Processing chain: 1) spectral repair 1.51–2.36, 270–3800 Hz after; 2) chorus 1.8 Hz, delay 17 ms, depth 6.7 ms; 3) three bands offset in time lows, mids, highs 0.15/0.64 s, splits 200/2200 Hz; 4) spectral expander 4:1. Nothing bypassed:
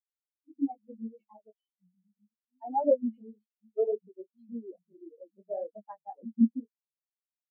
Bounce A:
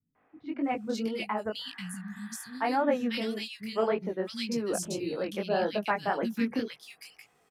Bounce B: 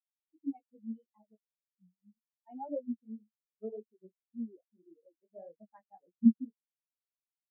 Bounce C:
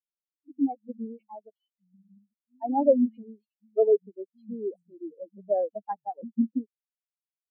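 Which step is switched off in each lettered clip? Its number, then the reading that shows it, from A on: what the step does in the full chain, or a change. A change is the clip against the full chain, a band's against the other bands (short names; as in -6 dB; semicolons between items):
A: 4, crest factor change -2.5 dB; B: 3, momentary loudness spread change +1 LU; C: 2, loudness change +4.0 LU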